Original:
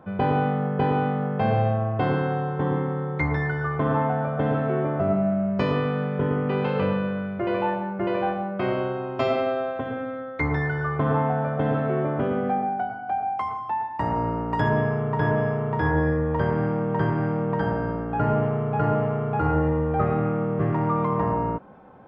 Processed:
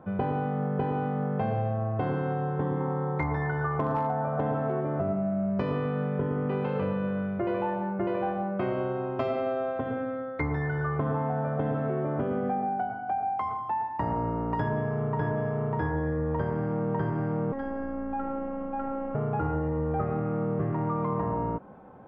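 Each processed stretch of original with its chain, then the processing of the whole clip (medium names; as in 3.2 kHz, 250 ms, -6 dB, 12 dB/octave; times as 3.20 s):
2.80–4.81 s: peaking EQ 890 Hz +7 dB 0.99 oct + hard clipper -12.5 dBFS
17.52–19.15 s: compression 2.5:1, threshold -25 dBFS + robot voice 273 Hz
whole clip: treble shelf 2.4 kHz -11 dB; compression, threshold -25 dBFS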